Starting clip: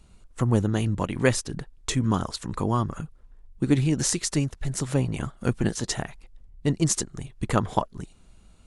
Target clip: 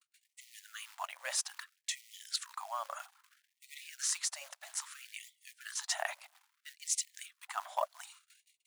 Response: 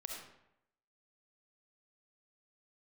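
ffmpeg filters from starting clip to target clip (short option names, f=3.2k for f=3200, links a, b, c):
-af "acontrast=78,acrusher=bits=6:mode=log:mix=0:aa=0.000001,agate=range=-49dB:threshold=-42dB:ratio=16:detection=peak,areverse,acompressor=threshold=-30dB:ratio=8,areverse,afftfilt=real='re*gte(b*sr/1024,540*pow(1900/540,0.5+0.5*sin(2*PI*0.61*pts/sr)))':imag='im*gte(b*sr/1024,540*pow(1900/540,0.5+0.5*sin(2*PI*0.61*pts/sr)))':win_size=1024:overlap=0.75"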